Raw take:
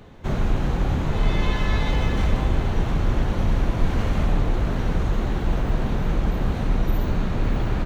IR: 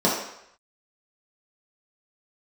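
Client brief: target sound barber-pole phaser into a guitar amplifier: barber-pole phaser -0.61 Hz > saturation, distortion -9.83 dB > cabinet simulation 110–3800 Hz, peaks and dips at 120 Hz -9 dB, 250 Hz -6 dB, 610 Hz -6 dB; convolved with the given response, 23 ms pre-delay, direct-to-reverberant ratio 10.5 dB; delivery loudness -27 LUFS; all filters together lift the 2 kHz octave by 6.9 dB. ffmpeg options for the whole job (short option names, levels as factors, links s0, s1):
-filter_complex "[0:a]equalizer=f=2000:t=o:g=8.5,asplit=2[s0][s1];[1:a]atrim=start_sample=2205,adelay=23[s2];[s1][s2]afir=irnorm=-1:irlink=0,volume=0.0398[s3];[s0][s3]amix=inputs=2:normalize=0,asplit=2[s4][s5];[s5]afreqshift=-0.61[s6];[s4][s6]amix=inputs=2:normalize=1,asoftclip=threshold=0.0668,highpass=110,equalizer=f=120:t=q:w=4:g=-9,equalizer=f=250:t=q:w=4:g=-6,equalizer=f=610:t=q:w=4:g=-6,lowpass=f=3800:w=0.5412,lowpass=f=3800:w=1.3066,volume=2.37"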